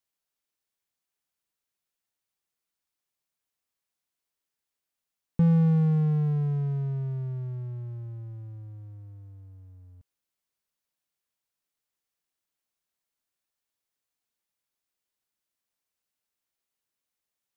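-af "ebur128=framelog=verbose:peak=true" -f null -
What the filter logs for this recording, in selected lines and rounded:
Integrated loudness:
  I:         -26.4 LUFS
  Threshold: -38.8 LUFS
Loudness range:
  LRA:        19.7 LU
  Threshold: -50.5 LUFS
  LRA low:   -46.2 LUFS
  LRA high:  -26.5 LUFS
True peak:
  Peak:      -13.7 dBFS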